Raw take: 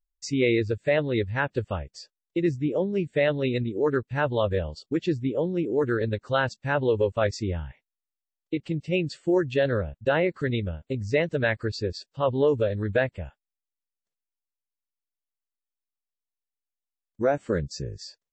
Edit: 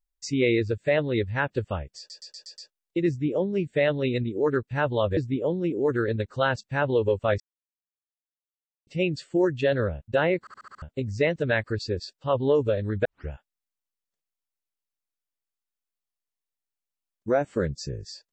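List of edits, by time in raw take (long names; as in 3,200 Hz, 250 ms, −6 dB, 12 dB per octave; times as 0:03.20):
0:01.98: stutter 0.12 s, 6 plays
0:04.57–0:05.10: remove
0:07.33–0:08.80: silence
0:10.33: stutter in place 0.07 s, 6 plays
0:12.98: tape start 0.26 s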